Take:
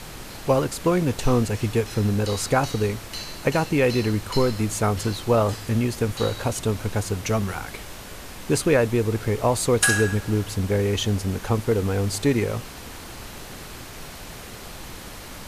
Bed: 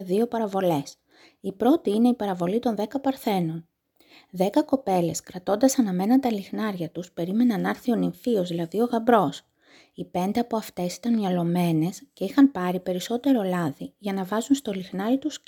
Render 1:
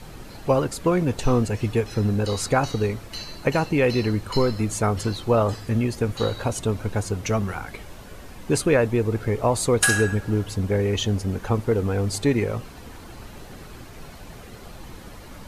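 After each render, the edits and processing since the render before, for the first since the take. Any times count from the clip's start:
broadband denoise 9 dB, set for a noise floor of −39 dBFS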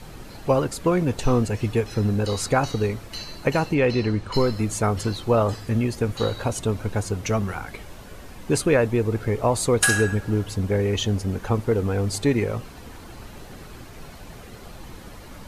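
0:03.74–0:04.34: high-frequency loss of the air 63 metres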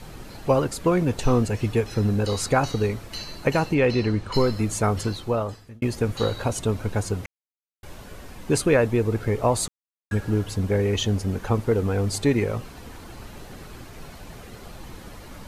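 0:04.98–0:05.82: fade out
0:07.26–0:07.83: silence
0:09.68–0:10.11: silence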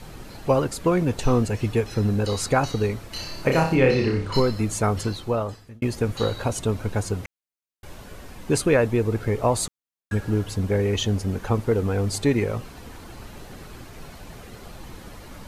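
0:03.13–0:04.40: flutter between parallel walls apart 5.2 metres, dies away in 0.42 s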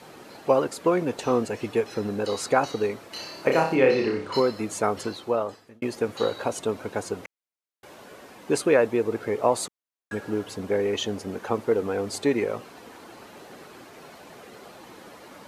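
high-pass filter 360 Hz 12 dB per octave
spectral tilt −1.5 dB per octave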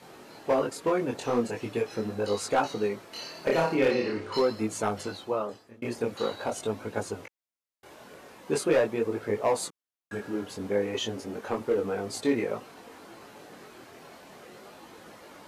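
hard clipping −14 dBFS, distortion −18 dB
multi-voice chorus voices 2, 0.43 Hz, delay 22 ms, depth 4 ms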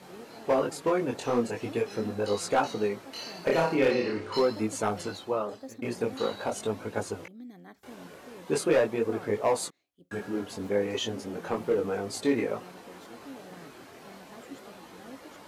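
mix in bed −24.5 dB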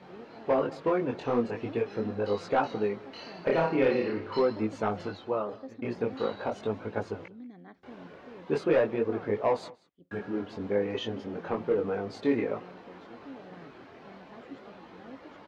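high-frequency loss of the air 240 metres
single-tap delay 188 ms −22 dB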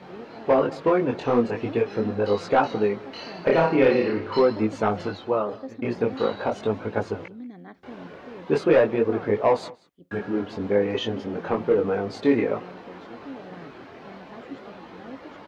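level +6.5 dB

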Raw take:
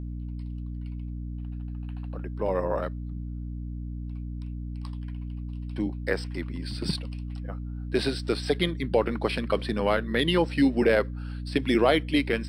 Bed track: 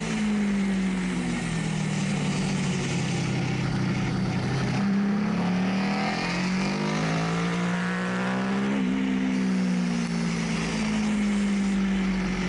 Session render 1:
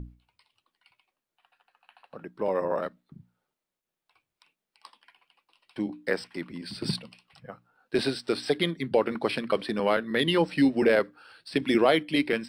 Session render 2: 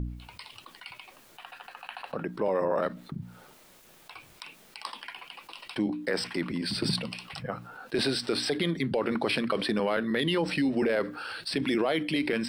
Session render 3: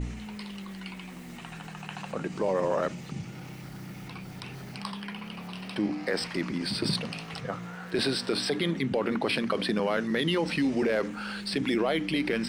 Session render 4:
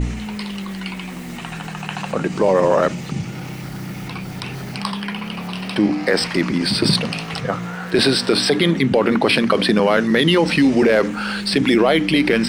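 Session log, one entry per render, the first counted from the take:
mains-hum notches 60/120/180/240/300 Hz
brickwall limiter −20 dBFS, peak gain reduction 10.5 dB; envelope flattener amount 50%
mix in bed track −16 dB
level +12 dB

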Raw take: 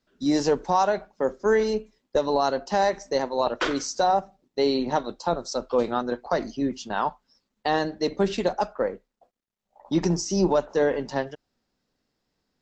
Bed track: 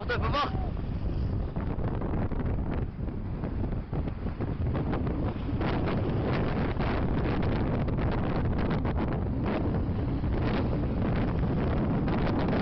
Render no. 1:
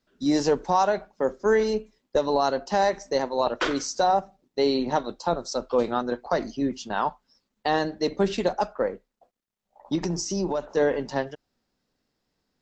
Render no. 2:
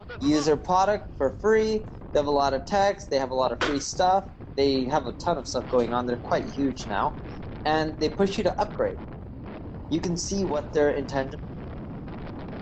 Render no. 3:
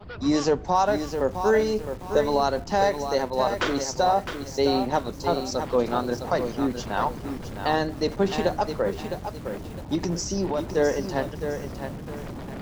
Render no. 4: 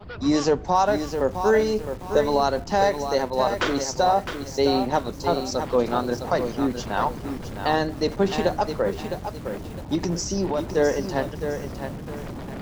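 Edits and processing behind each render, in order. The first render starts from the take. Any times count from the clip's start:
0:09.95–0:10.77: downward compressor 3 to 1, threshold −24 dBFS
mix in bed track −9.5 dB
feedback echo at a low word length 660 ms, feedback 35%, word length 7 bits, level −7.5 dB
level +1.5 dB

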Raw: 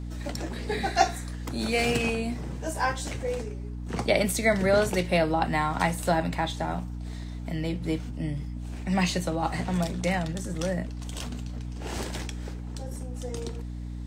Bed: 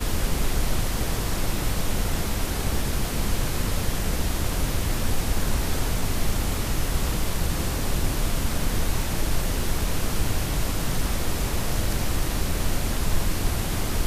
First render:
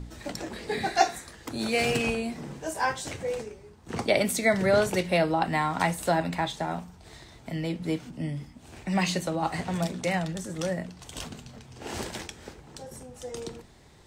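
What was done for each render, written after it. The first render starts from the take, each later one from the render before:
hum removal 60 Hz, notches 5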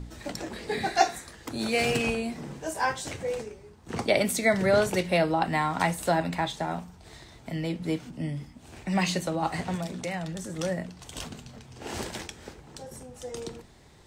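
0:09.75–0:10.53: downward compressor 2 to 1, threshold −32 dBFS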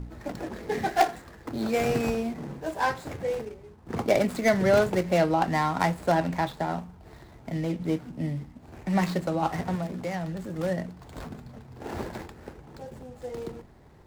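running median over 15 samples
in parallel at −12 dB: wrap-around overflow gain 13 dB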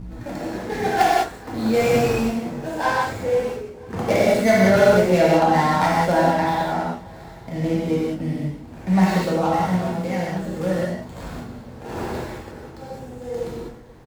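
repeating echo 486 ms, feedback 51%, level −23.5 dB
reverb whose tail is shaped and stops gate 230 ms flat, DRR −6.5 dB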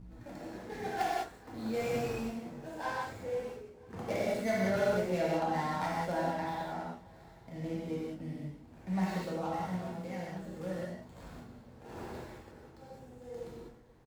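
level −15.5 dB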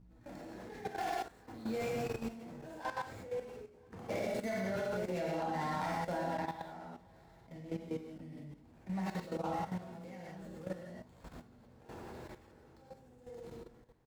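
output level in coarse steps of 12 dB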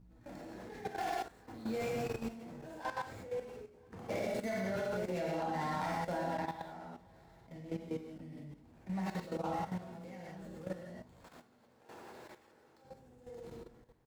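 0:11.24–0:12.85: high-pass filter 520 Hz 6 dB per octave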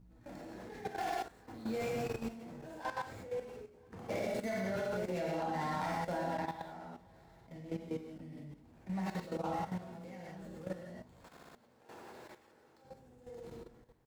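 0:11.31: stutter in place 0.06 s, 4 plays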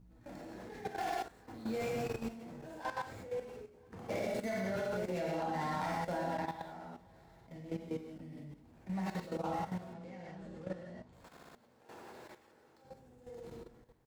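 0:09.93–0:11.13: high-frequency loss of the air 68 metres

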